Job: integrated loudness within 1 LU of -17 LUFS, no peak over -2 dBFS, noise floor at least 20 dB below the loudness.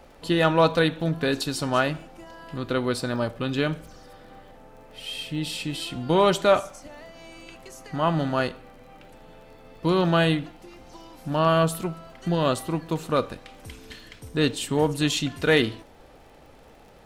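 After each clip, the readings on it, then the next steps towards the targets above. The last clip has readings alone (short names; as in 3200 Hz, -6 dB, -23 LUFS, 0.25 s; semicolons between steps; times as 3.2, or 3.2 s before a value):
ticks 28/s; loudness -24.5 LUFS; peak -7.5 dBFS; loudness target -17.0 LUFS
-> de-click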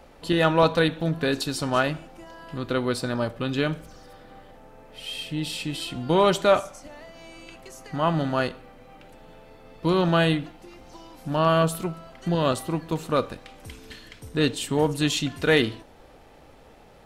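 ticks 0.059/s; loudness -24.5 LUFS; peak -7.5 dBFS; loudness target -17.0 LUFS
-> gain +7.5 dB; limiter -2 dBFS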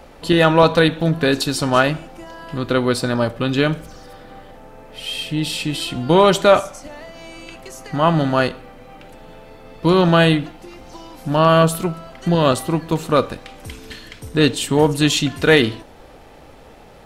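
loudness -17.5 LUFS; peak -2.0 dBFS; noise floor -43 dBFS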